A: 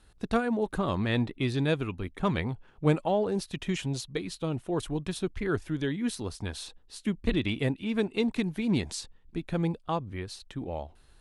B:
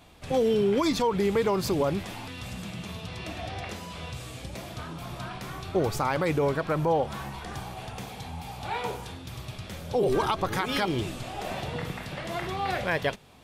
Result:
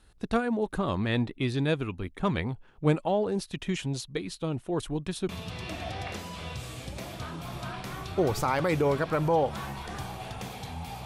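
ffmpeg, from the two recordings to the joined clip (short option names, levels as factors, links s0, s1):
-filter_complex "[0:a]apad=whole_dur=11.05,atrim=end=11.05,atrim=end=5.292[s0];[1:a]atrim=start=2.858:end=8.62[s1];[s0][s1]acrossfade=d=0.004:c1=hsin:c2=hsin"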